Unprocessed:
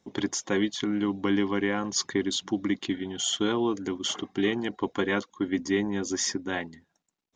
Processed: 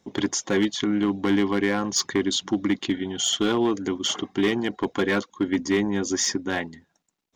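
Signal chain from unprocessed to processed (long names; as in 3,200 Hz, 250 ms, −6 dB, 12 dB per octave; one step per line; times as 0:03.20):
gain into a clipping stage and back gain 19.5 dB
level +4.5 dB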